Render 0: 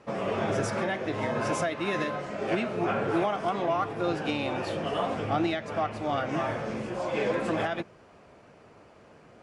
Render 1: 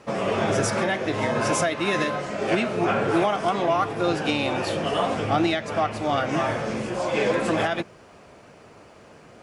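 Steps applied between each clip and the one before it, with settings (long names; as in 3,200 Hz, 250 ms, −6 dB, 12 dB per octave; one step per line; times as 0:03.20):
high-shelf EQ 4,100 Hz +7.5 dB
level +5 dB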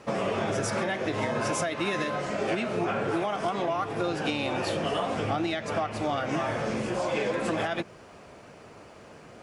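downward compressor, threshold −25 dBFS, peak gain reduction 8.5 dB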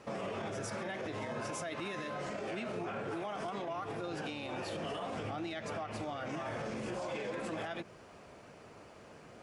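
brickwall limiter −25.5 dBFS, peak gain reduction 9 dB
level −5.5 dB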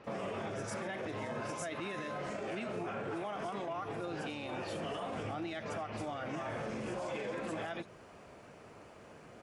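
multiband delay without the direct sound lows, highs 40 ms, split 4,700 Hz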